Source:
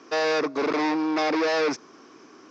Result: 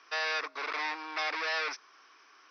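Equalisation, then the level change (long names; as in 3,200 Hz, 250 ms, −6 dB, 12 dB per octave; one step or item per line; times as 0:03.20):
high-pass filter 1,400 Hz 12 dB per octave
linear-phase brick-wall low-pass 6,200 Hz
high-frequency loss of the air 110 metres
0.0 dB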